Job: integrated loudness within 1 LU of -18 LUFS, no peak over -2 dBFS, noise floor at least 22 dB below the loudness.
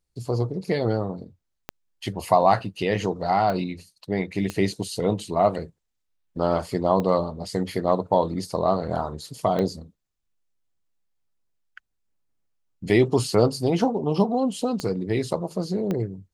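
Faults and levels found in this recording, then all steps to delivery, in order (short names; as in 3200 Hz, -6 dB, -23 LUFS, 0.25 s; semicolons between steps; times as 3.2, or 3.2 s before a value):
clicks 7; loudness -24.5 LUFS; peak -4.5 dBFS; loudness target -18.0 LUFS
-> de-click; gain +6.5 dB; limiter -2 dBFS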